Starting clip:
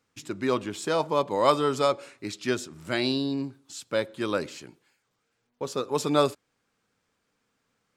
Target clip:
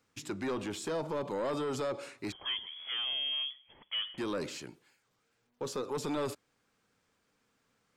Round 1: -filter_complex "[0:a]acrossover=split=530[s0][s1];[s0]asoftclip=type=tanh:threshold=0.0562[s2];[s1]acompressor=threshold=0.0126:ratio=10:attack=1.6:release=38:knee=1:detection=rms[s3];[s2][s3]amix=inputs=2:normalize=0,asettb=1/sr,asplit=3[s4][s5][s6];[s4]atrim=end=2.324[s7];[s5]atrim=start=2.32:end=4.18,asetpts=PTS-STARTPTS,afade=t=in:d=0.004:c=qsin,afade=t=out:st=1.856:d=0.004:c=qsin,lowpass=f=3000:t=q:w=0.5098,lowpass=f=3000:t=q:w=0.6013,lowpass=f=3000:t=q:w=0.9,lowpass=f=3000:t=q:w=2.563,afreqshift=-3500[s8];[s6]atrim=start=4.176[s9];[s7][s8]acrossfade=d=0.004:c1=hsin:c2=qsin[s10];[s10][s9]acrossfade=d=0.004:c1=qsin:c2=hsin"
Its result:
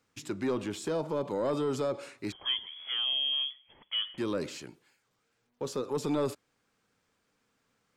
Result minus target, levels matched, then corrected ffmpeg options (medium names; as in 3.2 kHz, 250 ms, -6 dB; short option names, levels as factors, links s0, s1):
saturation: distortion -7 dB
-filter_complex "[0:a]acrossover=split=530[s0][s1];[s0]asoftclip=type=tanh:threshold=0.0224[s2];[s1]acompressor=threshold=0.0126:ratio=10:attack=1.6:release=38:knee=1:detection=rms[s3];[s2][s3]amix=inputs=2:normalize=0,asettb=1/sr,asplit=3[s4][s5][s6];[s4]atrim=end=2.324[s7];[s5]atrim=start=2.32:end=4.18,asetpts=PTS-STARTPTS,afade=t=in:d=0.004:c=qsin,afade=t=out:st=1.856:d=0.004:c=qsin,lowpass=f=3000:t=q:w=0.5098,lowpass=f=3000:t=q:w=0.6013,lowpass=f=3000:t=q:w=0.9,lowpass=f=3000:t=q:w=2.563,afreqshift=-3500[s8];[s6]atrim=start=4.176[s9];[s7][s8]acrossfade=d=0.004:c1=hsin:c2=qsin[s10];[s10][s9]acrossfade=d=0.004:c1=qsin:c2=hsin"